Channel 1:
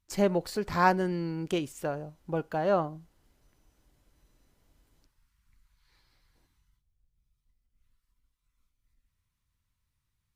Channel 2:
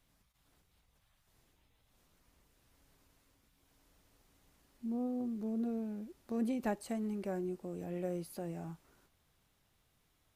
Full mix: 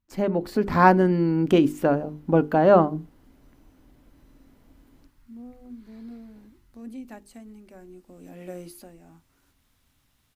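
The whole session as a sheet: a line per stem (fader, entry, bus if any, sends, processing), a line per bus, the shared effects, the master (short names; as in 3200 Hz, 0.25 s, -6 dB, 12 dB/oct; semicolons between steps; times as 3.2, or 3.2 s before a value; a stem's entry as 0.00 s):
-0.5 dB, 0.00 s, no send, bell 7400 Hz -11 dB 2.2 oct; AGC gain up to 11 dB
+1.5 dB, 0.45 s, no send, tilt shelf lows -5 dB, about 770 Hz; auto duck -10 dB, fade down 0.25 s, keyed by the first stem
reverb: off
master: bell 260 Hz +12 dB 0.5 oct; notches 50/100/150/200/250/300/350/400/450 Hz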